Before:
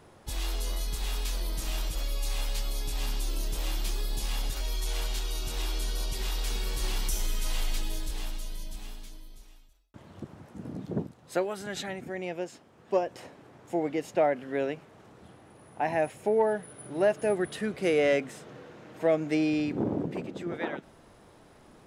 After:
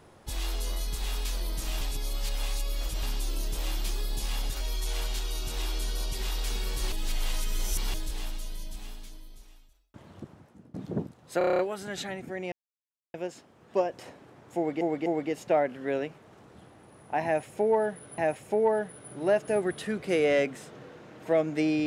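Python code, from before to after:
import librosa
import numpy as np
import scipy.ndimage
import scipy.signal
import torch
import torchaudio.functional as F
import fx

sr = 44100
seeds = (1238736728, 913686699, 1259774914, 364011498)

y = fx.edit(x, sr, fx.reverse_span(start_s=1.81, length_s=1.22),
    fx.reverse_span(start_s=6.92, length_s=1.02),
    fx.fade_out_to(start_s=10.1, length_s=0.64, floor_db=-23.0),
    fx.stutter(start_s=11.38, slice_s=0.03, count=8),
    fx.insert_silence(at_s=12.31, length_s=0.62),
    fx.repeat(start_s=13.73, length_s=0.25, count=3),
    fx.repeat(start_s=15.92, length_s=0.93, count=2), tone=tone)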